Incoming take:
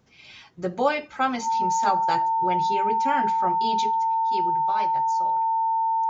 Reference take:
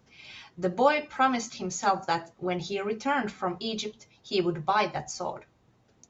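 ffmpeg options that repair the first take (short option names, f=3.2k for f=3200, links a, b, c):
-af "bandreject=f=900:w=30,asetnsamples=n=441:p=0,asendcmd='4.14 volume volume 8dB',volume=0dB"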